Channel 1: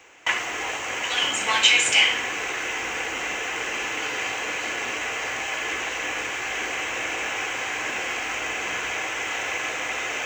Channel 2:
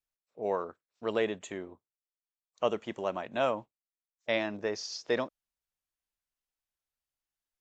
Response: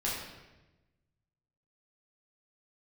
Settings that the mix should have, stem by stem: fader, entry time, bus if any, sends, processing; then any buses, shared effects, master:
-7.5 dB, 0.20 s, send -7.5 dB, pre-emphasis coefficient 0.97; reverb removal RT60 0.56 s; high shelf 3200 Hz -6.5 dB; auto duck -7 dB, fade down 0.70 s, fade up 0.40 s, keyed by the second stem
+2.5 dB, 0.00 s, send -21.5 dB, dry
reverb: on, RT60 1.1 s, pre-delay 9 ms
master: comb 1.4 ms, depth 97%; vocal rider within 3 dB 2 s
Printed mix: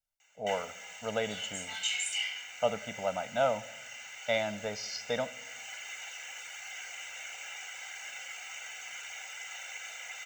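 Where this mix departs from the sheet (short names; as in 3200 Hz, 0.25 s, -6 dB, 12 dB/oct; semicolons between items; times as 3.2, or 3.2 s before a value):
stem 2 +2.5 dB -> -3.5 dB; master: missing vocal rider within 3 dB 2 s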